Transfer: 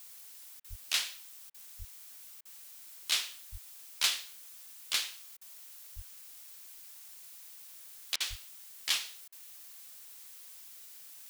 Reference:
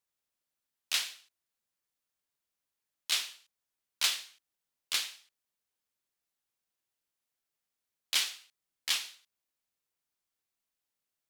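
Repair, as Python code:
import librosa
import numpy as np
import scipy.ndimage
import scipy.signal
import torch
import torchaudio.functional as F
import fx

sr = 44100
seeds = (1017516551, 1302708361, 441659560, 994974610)

y = fx.fix_deplosive(x, sr, at_s=(0.69, 1.78, 3.51, 5.95, 8.29))
y = fx.fix_interpolate(y, sr, at_s=(0.6, 1.5, 2.41, 5.37, 8.16, 9.28), length_ms=42.0)
y = fx.noise_reduce(y, sr, print_start_s=2.45, print_end_s=2.95, reduce_db=30.0)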